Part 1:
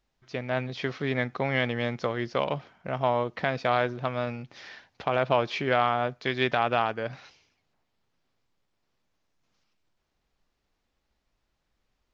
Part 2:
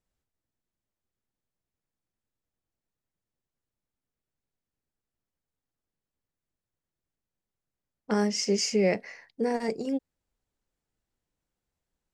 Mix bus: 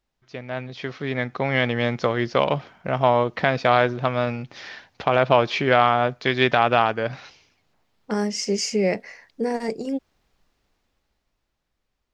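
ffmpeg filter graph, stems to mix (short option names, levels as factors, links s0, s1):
-filter_complex "[0:a]volume=0.794[s0];[1:a]volume=0.376[s1];[s0][s1]amix=inputs=2:normalize=0,dynaudnorm=f=140:g=21:m=3.76"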